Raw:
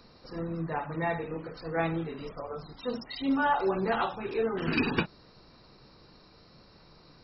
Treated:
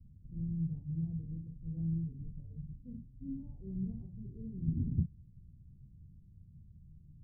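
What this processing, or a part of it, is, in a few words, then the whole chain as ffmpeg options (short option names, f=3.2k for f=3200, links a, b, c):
the neighbour's flat through the wall: -af "lowpass=f=160:w=0.5412,lowpass=f=160:w=1.3066,equalizer=f=81:t=o:w=0.71:g=6.5,volume=4dB"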